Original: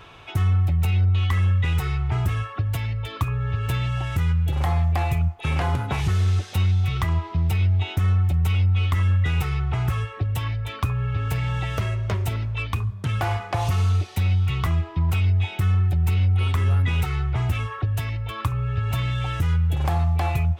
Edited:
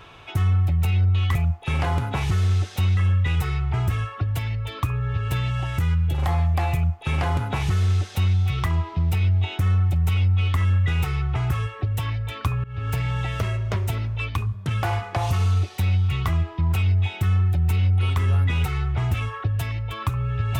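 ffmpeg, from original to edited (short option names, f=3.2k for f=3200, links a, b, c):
-filter_complex "[0:a]asplit=4[a][b][c][d];[a]atrim=end=1.352[e];[b]atrim=start=5.118:end=6.742[f];[c]atrim=start=1.348:end=11.02,asetpts=PTS-STARTPTS,afade=t=out:st=9.668:d=0.004:c=hsin:silence=0.0749894[g];[d]atrim=start=11.02,asetpts=PTS-STARTPTS,afade=t=in:d=0.26:silence=0.0749894[h];[e][f]acrossfade=d=0.004:c1=hsin:c2=hsin[i];[g][h]concat=n=2:v=0:a=1[j];[i][j]acrossfade=d=0.004:c1=hsin:c2=hsin"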